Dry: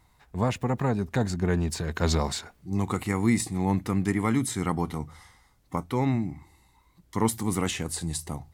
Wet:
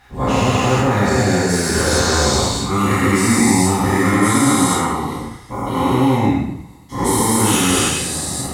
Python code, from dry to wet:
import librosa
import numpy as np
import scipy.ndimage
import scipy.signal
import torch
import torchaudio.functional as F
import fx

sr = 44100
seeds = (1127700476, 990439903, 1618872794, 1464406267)

p1 = fx.spec_dilate(x, sr, span_ms=480)
p2 = fx.level_steps(p1, sr, step_db=11)
p3 = p1 + (p2 * librosa.db_to_amplitude(1.0))
p4 = fx.clip_asym(p3, sr, top_db=-2.5, bottom_db=-0.5)
p5 = fx.rev_double_slope(p4, sr, seeds[0], early_s=0.6, late_s=2.1, knee_db=-25, drr_db=-7.0)
y = p5 * librosa.db_to_amplitude(-8.5)